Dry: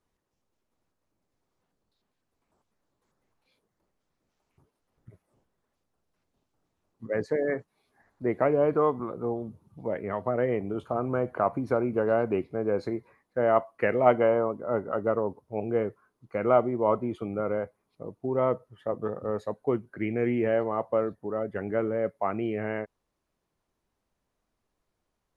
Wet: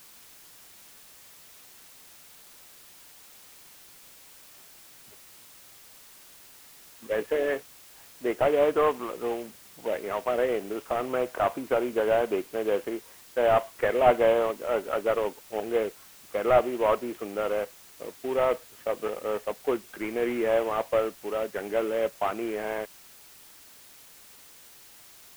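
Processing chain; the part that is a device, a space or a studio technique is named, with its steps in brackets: army field radio (band-pass 370–3300 Hz; CVSD coder 16 kbps; white noise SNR 22 dB); trim +3 dB

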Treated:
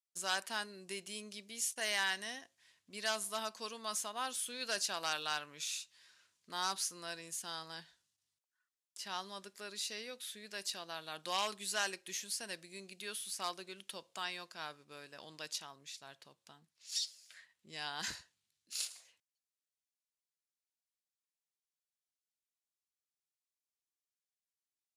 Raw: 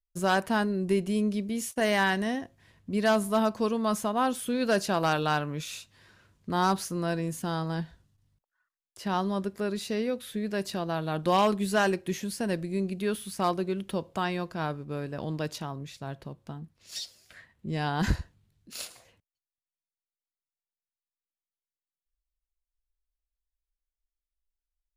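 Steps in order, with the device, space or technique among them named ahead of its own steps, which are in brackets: piezo pickup straight into a mixer (low-pass 7.4 kHz 12 dB/octave; differentiator); trim +4.5 dB

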